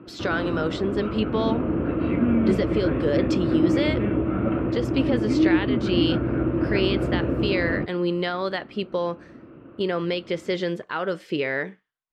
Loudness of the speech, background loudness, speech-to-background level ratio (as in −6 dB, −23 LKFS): −27.5 LKFS, −24.5 LKFS, −3.0 dB